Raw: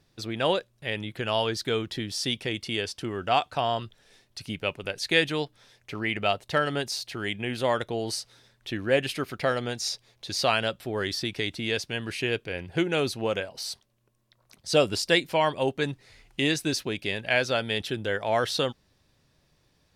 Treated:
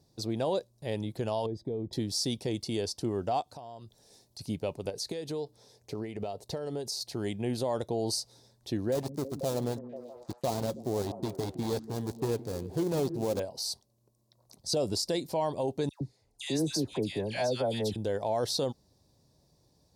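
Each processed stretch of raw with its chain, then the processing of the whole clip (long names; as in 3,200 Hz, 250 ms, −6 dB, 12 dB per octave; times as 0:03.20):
0:01.46–0:01.93: moving average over 31 samples + downward compressor, threshold −31 dBFS
0:03.41–0:04.39: high-shelf EQ 6,200 Hz +5.5 dB + downward compressor 4 to 1, threshold −45 dBFS
0:04.89–0:07.01: parametric band 440 Hz +7 dB 0.34 octaves + downward compressor 10 to 1, threshold −31 dBFS
0:08.92–0:13.40: gap after every zero crossing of 0.24 ms + echo through a band-pass that steps 162 ms, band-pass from 190 Hz, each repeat 0.7 octaves, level −10 dB
0:15.89–0:17.96: noise gate −52 dBFS, range −12 dB + all-pass dispersion lows, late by 118 ms, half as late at 1,400 Hz
whole clip: high-pass filter 45 Hz; flat-topped bell 2,000 Hz −15.5 dB; brickwall limiter −22 dBFS; level +1 dB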